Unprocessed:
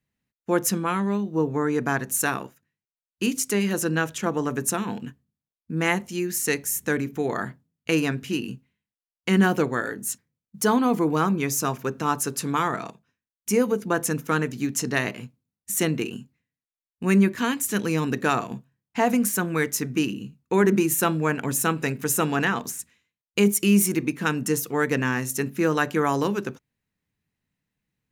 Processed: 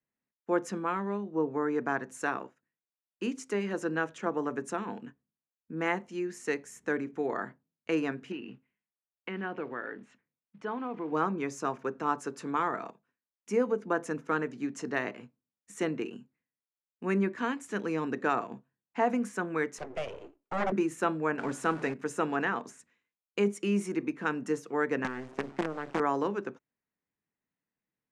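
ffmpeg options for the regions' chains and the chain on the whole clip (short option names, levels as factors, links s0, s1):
-filter_complex "[0:a]asettb=1/sr,asplit=3[s0][s1][s2];[s0]atrim=end=8.324[s3];[s1]atrim=start=8.32:end=11.12,asetpts=PTS-STARTPTS,afade=t=in:d=0.004:c=qsin,afade=t=out:st=2.796:d=0.004:c=qsin,acompressor=threshold=0.0251:ratio=2:attack=3.2:release=140:knee=1:detection=peak,acrusher=bits=6:mode=log:mix=0:aa=0.000001,lowpass=f=2800:t=q:w=1.7[s4];[s2]atrim=start=11.116[s5];[s3][s4]acrossfade=d=0.004:c1=hsin:c2=qsin[s6];[s6][s5]acrossfade=d=0.004:c1=qsin:c2=hsin,asettb=1/sr,asplit=3[s7][s8][s9];[s7]atrim=end=19.784[s10];[s8]atrim=start=19.78:end=20.72,asetpts=PTS-STARTPTS,afade=t=in:d=0.004:c=qsin,afade=t=out:st=0.936:d=0.004:c=qsin,highpass=f=85:w=0.5412,highpass=f=85:w=1.3066,aeval=exprs='abs(val(0))':c=same[s11];[s9]atrim=start=20.716[s12];[s10][s11]acrossfade=d=0.004:c1=hsin:c2=qsin[s13];[s13][s12]acrossfade=d=0.004:c1=qsin:c2=hsin,asettb=1/sr,asplit=3[s14][s15][s16];[s14]atrim=end=21.384[s17];[s15]atrim=start=21.38:end=21.94,asetpts=PTS-STARTPTS,afade=t=in:d=0.004:c=qsin,afade=t=out:st=0.556:d=0.004:c=qsin,aeval=exprs='val(0)+0.5*0.0355*sgn(val(0))':c=same,bandreject=f=363.2:t=h:w=4,bandreject=f=726.4:t=h:w=4,bandreject=f=1089.6:t=h:w=4,bandreject=f=1452.8:t=h:w=4,bandreject=f=1816:t=h:w=4,bandreject=f=2179.2:t=h:w=4,bandreject=f=2542.4:t=h:w=4,bandreject=f=2905.6:t=h:w=4,bandreject=f=3268.8:t=h:w=4,bandreject=f=3632:t=h:w=4,bandreject=f=3995.2:t=h:w=4,bandreject=f=4358.4:t=h:w=4,bandreject=f=4721.6:t=h:w=4,bandreject=f=5084.8:t=h:w=4,bandreject=f=5448:t=h:w=4,bandreject=f=5811.2:t=h:w=4,bandreject=f=6174.4:t=h:w=4,bandreject=f=6537.6:t=h:w=4,bandreject=f=6900.8:t=h:w=4,bandreject=f=7264:t=h:w=4,bandreject=f=7627.2:t=h:w=4,bandreject=f=7990.4:t=h:w=4,bandreject=f=8353.6:t=h:w=4,bandreject=f=8716.8:t=h:w=4,bandreject=f=9080:t=h:w=4,bandreject=f=9443.2:t=h:w=4,bandreject=f=9806.4:t=h:w=4[s18];[s16]atrim=start=21.936[s19];[s17][s18]acrossfade=d=0.004:c1=hsin:c2=qsin[s20];[s20][s19]acrossfade=d=0.004:c1=qsin:c2=hsin,asettb=1/sr,asplit=3[s21][s22][s23];[s21]atrim=end=25.044[s24];[s22]atrim=start=25.04:end=26,asetpts=PTS-STARTPTS,afade=t=in:d=0.004:c=qsin,afade=t=out:st=0.956:d=0.004:c=qsin,bass=f=250:g=14,treble=f=4000:g=-13,acrossover=split=200|4100[s25][s26][s27];[s25]acompressor=threshold=0.0251:ratio=4[s28];[s26]acompressor=threshold=0.0562:ratio=4[s29];[s27]acompressor=threshold=0.00126:ratio=4[s30];[s28][s29][s30]amix=inputs=3:normalize=0,acrusher=bits=4:dc=4:mix=0:aa=0.000001[s31];[s23]atrim=start=25.996[s32];[s24][s31]acrossfade=d=0.004:c1=hsin:c2=qsin[s33];[s33][s32]acrossfade=d=0.004:c1=qsin:c2=hsin,lowpass=f=8300:w=0.5412,lowpass=f=8300:w=1.3066,acrossover=split=230 2100:gain=0.178 1 0.224[s34][s35][s36];[s34][s35][s36]amix=inputs=3:normalize=0,volume=0.596"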